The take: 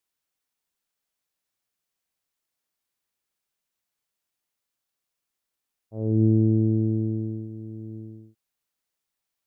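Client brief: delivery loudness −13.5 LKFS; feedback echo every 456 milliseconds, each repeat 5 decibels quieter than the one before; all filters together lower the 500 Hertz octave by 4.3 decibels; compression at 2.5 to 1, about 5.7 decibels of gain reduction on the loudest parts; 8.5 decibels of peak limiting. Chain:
parametric band 500 Hz −8 dB
downward compressor 2.5 to 1, threshold −25 dBFS
brickwall limiter −26.5 dBFS
repeating echo 456 ms, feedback 56%, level −5 dB
level +22 dB

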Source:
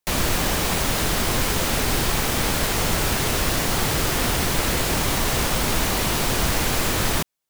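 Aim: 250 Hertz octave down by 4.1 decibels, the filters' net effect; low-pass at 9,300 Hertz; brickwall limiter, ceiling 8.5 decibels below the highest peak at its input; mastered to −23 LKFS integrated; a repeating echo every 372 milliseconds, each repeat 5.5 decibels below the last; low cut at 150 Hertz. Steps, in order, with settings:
high-pass filter 150 Hz
low-pass filter 9,300 Hz
parametric band 250 Hz −4.5 dB
brickwall limiter −20 dBFS
repeating echo 372 ms, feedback 53%, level −5.5 dB
level +3.5 dB

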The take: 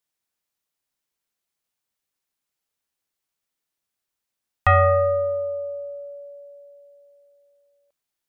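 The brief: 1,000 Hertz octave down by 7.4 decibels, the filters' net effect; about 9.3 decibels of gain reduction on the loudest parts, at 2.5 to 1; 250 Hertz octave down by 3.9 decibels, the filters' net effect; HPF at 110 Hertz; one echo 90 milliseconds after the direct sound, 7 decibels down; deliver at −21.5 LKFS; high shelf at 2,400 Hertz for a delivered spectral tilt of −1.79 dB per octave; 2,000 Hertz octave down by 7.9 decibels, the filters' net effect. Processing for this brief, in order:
high-pass filter 110 Hz
parametric band 250 Hz −5.5 dB
parametric band 1,000 Hz −7 dB
parametric band 2,000 Hz −4 dB
high-shelf EQ 2,400 Hz −6.5 dB
downward compressor 2.5 to 1, threshold −32 dBFS
single-tap delay 90 ms −7 dB
level +12.5 dB

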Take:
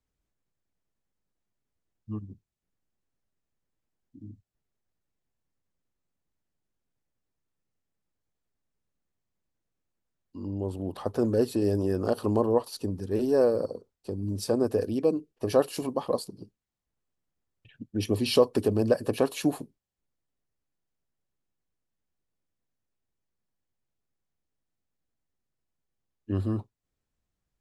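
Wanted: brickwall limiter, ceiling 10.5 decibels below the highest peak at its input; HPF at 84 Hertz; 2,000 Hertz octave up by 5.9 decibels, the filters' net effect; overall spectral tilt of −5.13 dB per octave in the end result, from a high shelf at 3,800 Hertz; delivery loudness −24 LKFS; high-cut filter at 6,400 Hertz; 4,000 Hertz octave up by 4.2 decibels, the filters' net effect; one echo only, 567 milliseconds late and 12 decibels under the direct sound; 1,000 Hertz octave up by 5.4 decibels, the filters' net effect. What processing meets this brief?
high-pass filter 84 Hz
low-pass filter 6,400 Hz
parametric band 1,000 Hz +5.5 dB
parametric band 2,000 Hz +5.5 dB
high-shelf EQ 3,800 Hz −3 dB
parametric band 4,000 Hz +6 dB
brickwall limiter −17.5 dBFS
single-tap delay 567 ms −12 dB
level +6 dB

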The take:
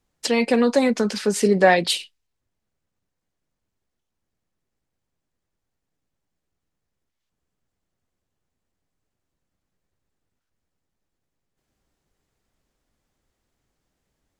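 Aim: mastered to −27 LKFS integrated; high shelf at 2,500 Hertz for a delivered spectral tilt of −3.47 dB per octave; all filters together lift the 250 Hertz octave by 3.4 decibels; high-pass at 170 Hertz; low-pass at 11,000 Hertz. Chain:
high-pass filter 170 Hz
low-pass filter 11,000 Hz
parametric band 250 Hz +5 dB
high-shelf EQ 2,500 Hz +6.5 dB
level −10 dB

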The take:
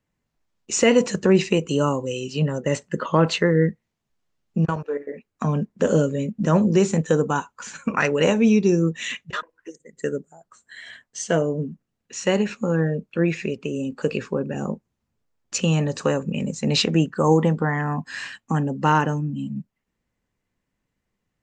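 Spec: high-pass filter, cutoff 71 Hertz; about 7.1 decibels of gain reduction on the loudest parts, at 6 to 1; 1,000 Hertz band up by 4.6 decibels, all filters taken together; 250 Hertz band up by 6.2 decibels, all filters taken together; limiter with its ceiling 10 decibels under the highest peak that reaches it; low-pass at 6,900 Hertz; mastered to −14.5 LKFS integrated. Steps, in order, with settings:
high-pass filter 71 Hz
low-pass filter 6,900 Hz
parametric band 250 Hz +8.5 dB
parametric band 1,000 Hz +5 dB
downward compressor 6 to 1, threshold −14 dBFS
level +10 dB
brickwall limiter −4 dBFS

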